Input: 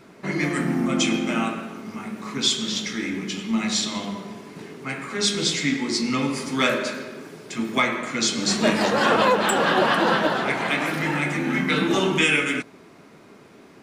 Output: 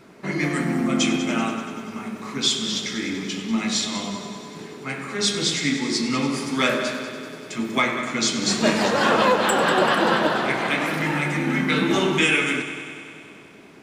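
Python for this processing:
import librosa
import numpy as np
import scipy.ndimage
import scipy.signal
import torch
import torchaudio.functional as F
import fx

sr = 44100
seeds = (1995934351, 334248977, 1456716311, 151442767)

y = fx.echo_heads(x, sr, ms=96, heads='first and second', feedback_pct=67, wet_db=-15)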